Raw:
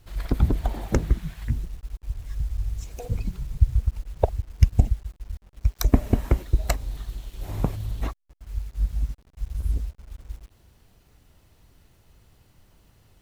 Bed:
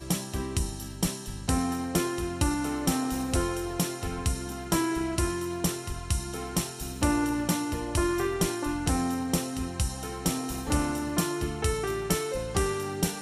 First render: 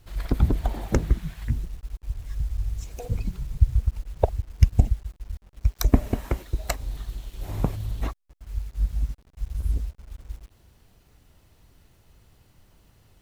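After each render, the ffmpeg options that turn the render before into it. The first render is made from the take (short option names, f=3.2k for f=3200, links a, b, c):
-filter_complex "[0:a]asettb=1/sr,asplit=3[a][b][c];[a]atrim=end=6.094[d];[b]atrim=start=6.09:end=6.79,asetpts=PTS-STARTPTS,afade=t=in:d=0.004:c=qsin,afade=t=out:st=0.696:d=0.004:c=qsin,lowshelf=f=370:g=-6.5[e];[c]atrim=start=6.786[f];[d][e]acrossfade=d=0.004:c1=hsin:c2=qsin[g];[g][f]acrossfade=d=0.004:c1=qsin:c2=hsin"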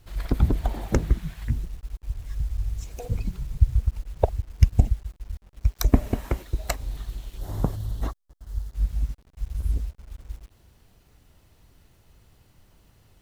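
-filter_complex "[0:a]asettb=1/sr,asplit=3[a][b][c];[a]atrim=end=7.384[d];[b]atrim=start=7.38:end=8.73,asetpts=PTS-STARTPTS,afade=t=in:d=0.004:c=qsin,afade=t=out:st=1.346:d=0.004:c=qsin,equalizer=f=2.4k:w=3.2:g=-12.5[e];[c]atrim=start=8.726[f];[d][e]acrossfade=d=0.004:c1=hsin:c2=qsin[g];[g][f]acrossfade=d=0.004:c1=qsin:c2=hsin"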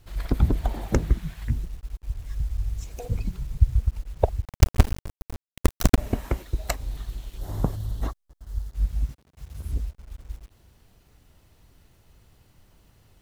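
-filter_complex "[0:a]asettb=1/sr,asplit=3[a][b][c];[a]atrim=end=4.454[d];[b]atrim=start=4.45:end=5.98,asetpts=PTS-STARTPTS,afade=t=in:d=0.004:c=qsin,afade=t=out:st=1.526:d=0.004:c=qsin,acrusher=bits=3:dc=4:mix=0:aa=0.000001[e];[c]atrim=start=5.976[f];[d][e]acrossfade=d=0.004:c1=hsin:c2=qsin[g];[g][f]acrossfade=d=0.004:c1=qsin:c2=hsin,asettb=1/sr,asplit=3[h][i][j];[h]atrim=end=9.094[k];[i]atrim=start=9.09:end=9.73,asetpts=PTS-STARTPTS,afade=t=in:d=0.004:c=qsin,afade=t=out:st=0.636:d=0.004:c=qsin,highpass=89[l];[j]atrim=start=9.726[m];[k][l]acrossfade=d=0.004:c1=hsin:c2=qsin[n];[n][m]acrossfade=d=0.004:c1=qsin:c2=hsin"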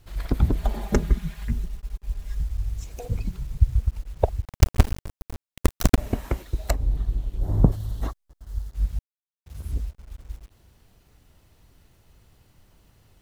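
-filter_complex "[0:a]asettb=1/sr,asplit=3[a][b][c];[a]atrim=end=0.584[d];[b]atrim=start=0.58:end=2.43,asetpts=PTS-STARTPTS,afade=t=in:d=0.004:c=qsin,afade=t=out:st=1.846:d=0.004:c=qsin,aecho=1:1:4.9:0.65,atrim=end_sample=81585[e];[c]atrim=start=2.426[f];[d][e]acrossfade=d=0.004:c1=hsin:c2=qsin[g];[g][f]acrossfade=d=0.004:c1=qsin:c2=hsin,asettb=1/sr,asplit=3[h][i][j];[h]atrim=end=6.704[k];[i]atrim=start=6.7:end=7.72,asetpts=PTS-STARTPTS,afade=t=in:d=0.004:c=qsin,afade=t=out:st=1.016:d=0.004:c=qsin,tiltshelf=f=880:g=8.5[l];[j]atrim=start=7.716[m];[k][l]acrossfade=d=0.004:c1=hsin:c2=qsin[n];[n][m]acrossfade=d=0.004:c1=qsin:c2=hsin,asplit=3[o][p][q];[o]atrim=end=8.99,asetpts=PTS-STARTPTS,afade=t=out:st=8.986:d=0.004:c=hsin[r];[p]atrim=start=8.99:end=9.46,asetpts=PTS-STARTPTS,volume=0[s];[q]atrim=start=9.46,asetpts=PTS-STARTPTS,afade=t=in:d=0.004:c=hsin[t];[r][s][t]concat=n=3:v=0:a=1"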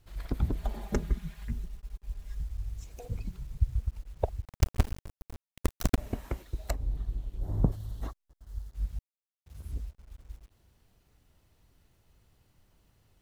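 -af "volume=-8.5dB"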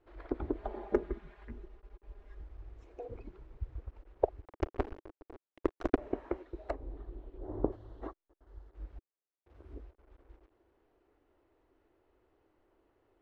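-af "lowpass=1.6k,lowshelf=f=240:t=q:w=3:g=-12"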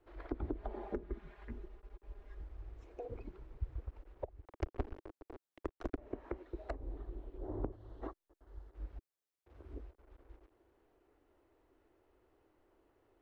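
-filter_complex "[0:a]alimiter=limit=-18dB:level=0:latency=1:release=465,acrossover=split=240[a][b];[b]acompressor=threshold=-40dB:ratio=6[c];[a][c]amix=inputs=2:normalize=0"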